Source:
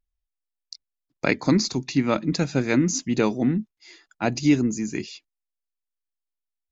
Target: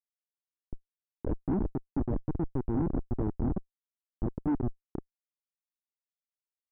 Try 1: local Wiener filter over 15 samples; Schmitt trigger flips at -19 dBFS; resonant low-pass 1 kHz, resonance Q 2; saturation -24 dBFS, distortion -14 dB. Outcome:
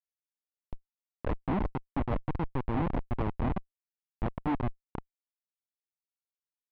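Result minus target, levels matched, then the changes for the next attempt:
1 kHz band +8.0 dB
change: resonant low-pass 370 Hz, resonance Q 2

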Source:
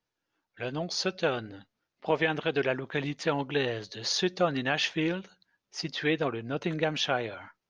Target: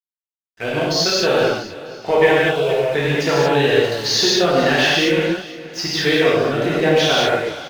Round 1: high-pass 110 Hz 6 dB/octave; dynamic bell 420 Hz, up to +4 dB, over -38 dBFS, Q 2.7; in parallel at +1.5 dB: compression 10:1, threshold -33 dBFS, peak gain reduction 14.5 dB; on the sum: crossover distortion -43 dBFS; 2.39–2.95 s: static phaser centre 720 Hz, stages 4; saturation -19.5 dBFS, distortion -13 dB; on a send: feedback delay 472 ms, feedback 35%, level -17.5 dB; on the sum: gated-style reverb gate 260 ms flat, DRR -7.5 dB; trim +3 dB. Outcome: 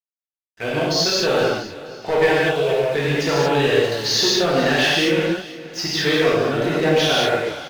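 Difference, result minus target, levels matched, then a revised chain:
saturation: distortion +12 dB
high-pass 110 Hz 6 dB/octave; dynamic bell 420 Hz, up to +4 dB, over -38 dBFS, Q 2.7; in parallel at +1.5 dB: compression 10:1, threshold -33 dBFS, peak gain reduction 14.5 dB; on the sum: crossover distortion -43 dBFS; 2.39–2.95 s: static phaser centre 720 Hz, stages 4; saturation -10.5 dBFS, distortion -26 dB; on a send: feedback delay 472 ms, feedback 35%, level -17.5 dB; on the sum: gated-style reverb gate 260 ms flat, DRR -7.5 dB; trim +3 dB

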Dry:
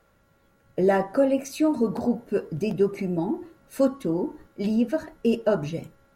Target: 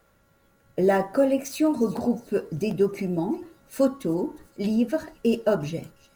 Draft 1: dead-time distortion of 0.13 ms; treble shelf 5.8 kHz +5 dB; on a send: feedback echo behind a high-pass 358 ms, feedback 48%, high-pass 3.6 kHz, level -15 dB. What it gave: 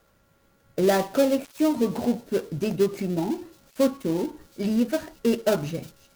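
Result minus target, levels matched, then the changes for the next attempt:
dead-time distortion: distortion +17 dB
change: dead-time distortion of 0.026 ms

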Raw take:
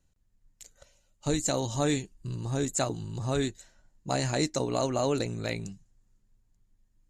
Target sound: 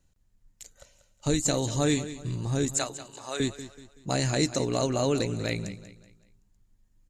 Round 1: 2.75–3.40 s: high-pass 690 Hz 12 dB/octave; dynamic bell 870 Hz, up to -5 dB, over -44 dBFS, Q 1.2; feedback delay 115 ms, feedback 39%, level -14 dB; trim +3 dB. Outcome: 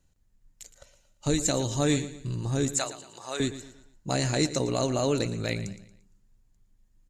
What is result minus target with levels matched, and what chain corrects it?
echo 74 ms early
2.75–3.40 s: high-pass 690 Hz 12 dB/octave; dynamic bell 870 Hz, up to -5 dB, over -44 dBFS, Q 1.2; feedback delay 189 ms, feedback 39%, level -14 dB; trim +3 dB

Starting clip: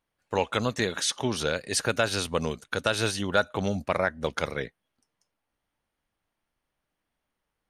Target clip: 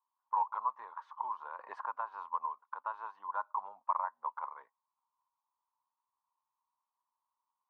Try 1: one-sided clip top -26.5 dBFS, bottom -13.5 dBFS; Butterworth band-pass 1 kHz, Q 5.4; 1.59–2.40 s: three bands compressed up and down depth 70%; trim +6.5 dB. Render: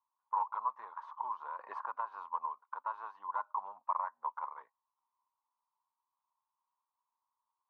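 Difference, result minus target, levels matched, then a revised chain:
one-sided clip: distortion +11 dB
one-sided clip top -15 dBFS, bottom -13.5 dBFS; Butterworth band-pass 1 kHz, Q 5.4; 1.59–2.40 s: three bands compressed up and down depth 70%; trim +6.5 dB

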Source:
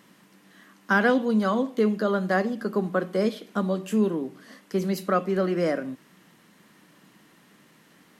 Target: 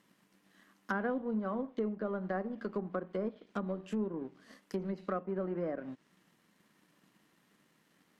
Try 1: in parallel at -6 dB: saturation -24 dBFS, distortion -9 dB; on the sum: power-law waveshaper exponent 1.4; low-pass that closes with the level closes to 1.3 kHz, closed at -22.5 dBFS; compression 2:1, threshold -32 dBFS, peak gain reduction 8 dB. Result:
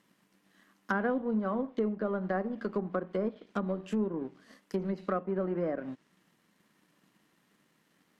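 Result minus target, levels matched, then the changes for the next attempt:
compression: peak gain reduction -4 dB
change: compression 2:1, threshold -40 dBFS, peak gain reduction 12 dB

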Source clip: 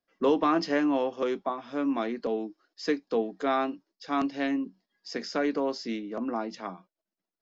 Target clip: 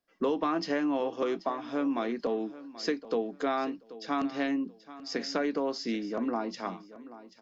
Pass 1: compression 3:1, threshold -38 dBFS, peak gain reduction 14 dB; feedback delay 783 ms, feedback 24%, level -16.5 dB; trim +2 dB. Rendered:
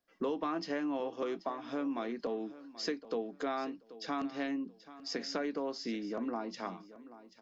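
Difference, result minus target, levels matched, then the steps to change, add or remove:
compression: peak gain reduction +6 dB
change: compression 3:1, threshold -29 dBFS, peak gain reduction 8 dB

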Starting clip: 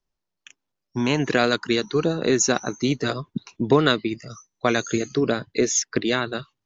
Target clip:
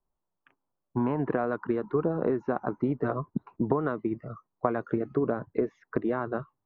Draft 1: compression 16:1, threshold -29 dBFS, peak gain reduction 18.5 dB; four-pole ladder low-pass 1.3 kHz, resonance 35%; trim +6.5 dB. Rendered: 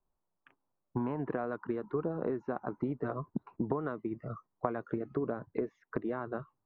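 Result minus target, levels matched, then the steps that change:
compression: peak gain reduction +7 dB
change: compression 16:1, threshold -21.5 dBFS, peak gain reduction 11.5 dB

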